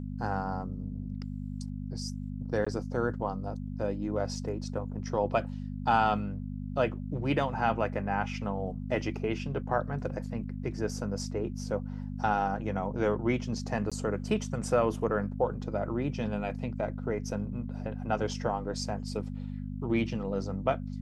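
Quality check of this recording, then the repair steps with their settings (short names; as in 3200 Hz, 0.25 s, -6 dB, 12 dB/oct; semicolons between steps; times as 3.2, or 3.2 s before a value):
hum 50 Hz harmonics 5 -37 dBFS
2.65–2.67 gap 15 ms
13.9–13.92 gap 16 ms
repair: de-hum 50 Hz, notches 5; interpolate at 2.65, 15 ms; interpolate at 13.9, 16 ms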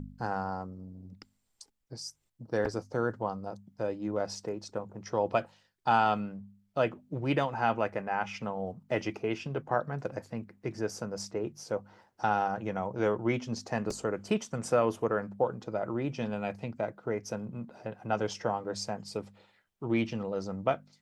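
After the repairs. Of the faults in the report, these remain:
none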